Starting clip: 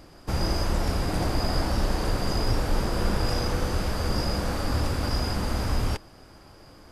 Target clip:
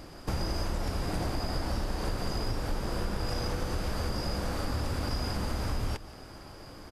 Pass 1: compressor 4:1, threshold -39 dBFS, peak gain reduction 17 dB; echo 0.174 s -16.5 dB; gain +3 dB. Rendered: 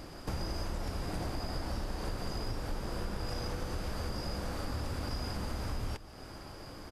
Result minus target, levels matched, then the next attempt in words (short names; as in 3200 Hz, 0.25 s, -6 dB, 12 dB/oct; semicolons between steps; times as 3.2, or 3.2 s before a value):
compressor: peak gain reduction +5 dB
compressor 4:1, threshold -32.5 dBFS, peak gain reduction 12 dB; echo 0.174 s -16.5 dB; gain +3 dB